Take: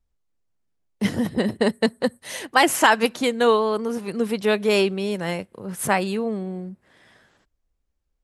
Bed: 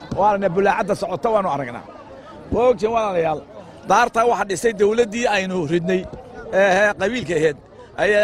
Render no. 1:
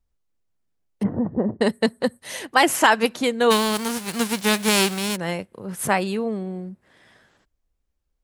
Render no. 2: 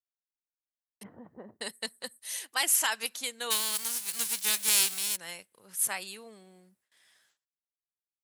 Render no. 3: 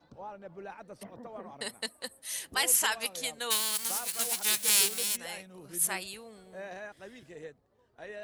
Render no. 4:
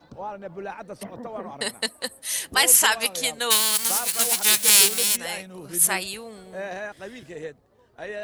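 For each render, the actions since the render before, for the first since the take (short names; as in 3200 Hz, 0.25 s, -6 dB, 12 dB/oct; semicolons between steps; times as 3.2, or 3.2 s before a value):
1.03–1.61 LPF 1100 Hz 24 dB/oct; 3.5–5.15 spectral whitening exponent 0.3
pre-emphasis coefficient 0.97; gate with hold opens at -59 dBFS
add bed -27.5 dB
gain +9.5 dB; limiter -2 dBFS, peak gain reduction 1 dB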